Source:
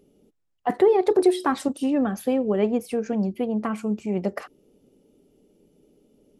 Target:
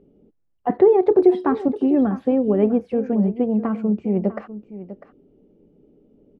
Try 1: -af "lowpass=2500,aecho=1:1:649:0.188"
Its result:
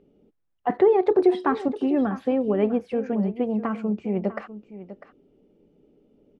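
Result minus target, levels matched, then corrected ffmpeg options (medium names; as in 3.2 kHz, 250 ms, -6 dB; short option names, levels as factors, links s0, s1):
1 kHz band +3.5 dB
-af "lowpass=2500,tiltshelf=f=920:g=6,aecho=1:1:649:0.188"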